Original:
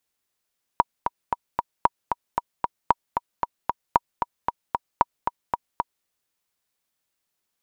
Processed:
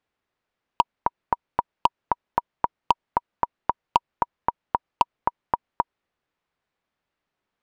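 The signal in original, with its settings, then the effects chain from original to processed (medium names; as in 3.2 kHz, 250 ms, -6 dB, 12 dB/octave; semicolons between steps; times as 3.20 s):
metronome 228 bpm, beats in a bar 4, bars 5, 956 Hz, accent 6.5 dB -2.5 dBFS
Bessel low-pass 1.9 kHz, order 2; in parallel at -0.5 dB: peak limiter -14.5 dBFS; on the sum: wavefolder -5 dBFS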